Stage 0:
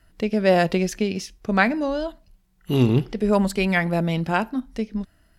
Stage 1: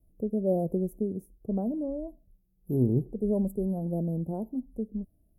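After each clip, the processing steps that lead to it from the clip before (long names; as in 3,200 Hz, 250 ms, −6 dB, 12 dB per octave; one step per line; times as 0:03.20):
inverse Chebyshev band-stop filter 1,900–4,100 Hz, stop band 80 dB
level −6.5 dB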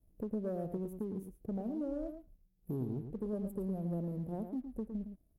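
downward compressor 6 to 1, threshold −33 dBFS, peak gain reduction 13 dB
leveller curve on the samples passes 1
slap from a distant wall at 19 metres, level −8 dB
level −5 dB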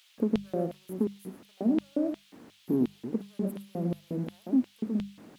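background noise brown −50 dBFS
auto-filter high-pass square 2.8 Hz 240–3,200 Hz
mains-hum notches 50/100/150/200 Hz
level +7.5 dB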